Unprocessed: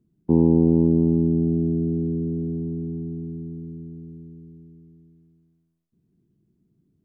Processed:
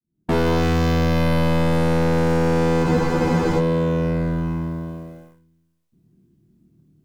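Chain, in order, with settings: opening faded in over 0.79 s; notch 420 Hz, Q 12; in parallel at 0 dB: negative-ratio compressor -28 dBFS, ratio -1; on the sum: sample leveller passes 3; hard clip -20.5 dBFS, distortion -9 dB; on a send: flutter echo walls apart 4.5 m, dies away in 0.33 s; on the sum: spectral freeze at 2.85, 0.73 s; gain +4 dB

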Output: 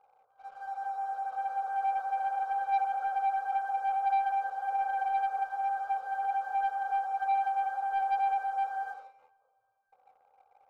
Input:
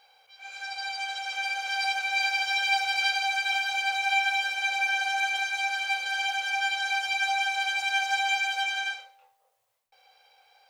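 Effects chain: elliptic low-pass 1300 Hz, stop band 40 dB; sample leveller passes 1; reverb, pre-delay 3 ms, DRR 19.5 dB

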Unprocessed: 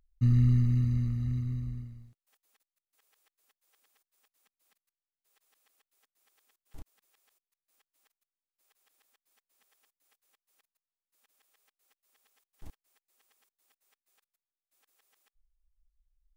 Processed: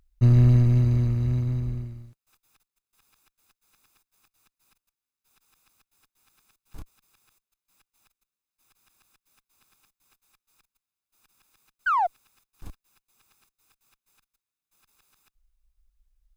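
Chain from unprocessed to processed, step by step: minimum comb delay 0.8 ms; painted sound fall, 11.86–12.07, 660–1600 Hz -29 dBFS; in parallel at -8 dB: one-sided clip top -36 dBFS; on the sum: gain +5 dB

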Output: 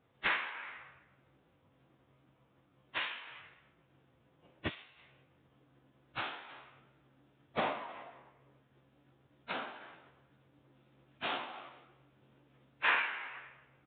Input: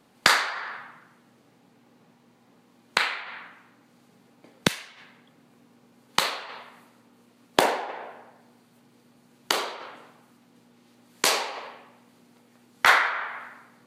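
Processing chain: inharmonic rescaling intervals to 111%; formant-preserving pitch shift -10 st; downsampling 8000 Hz; gain -5.5 dB

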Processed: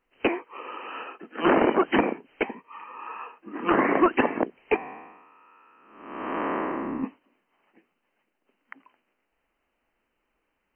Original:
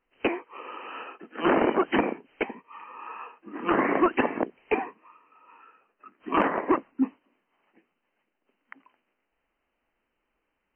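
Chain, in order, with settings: 4.76–7.04 time blur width 0.449 s; gain +2 dB

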